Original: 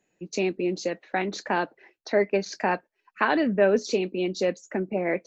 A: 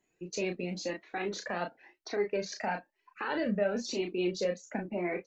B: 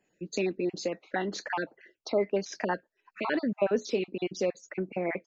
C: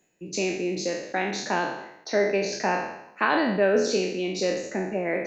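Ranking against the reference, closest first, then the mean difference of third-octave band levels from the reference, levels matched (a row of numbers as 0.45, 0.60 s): B, A, C; 2.5, 3.5, 7.0 dB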